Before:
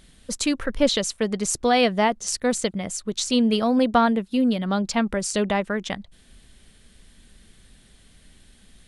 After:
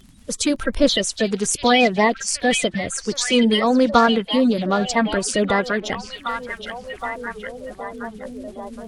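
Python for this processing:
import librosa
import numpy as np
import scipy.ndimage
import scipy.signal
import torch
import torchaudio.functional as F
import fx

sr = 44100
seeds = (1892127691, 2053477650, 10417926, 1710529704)

y = fx.spec_quant(x, sr, step_db=30)
y = fx.dmg_crackle(y, sr, seeds[0], per_s=15.0, level_db=-43.0)
y = fx.echo_stepped(y, sr, ms=769, hz=3200.0, octaves=-0.7, feedback_pct=70, wet_db=-3.0)
y = F.gain(torch.from_numpy(y), 4.0).numpy()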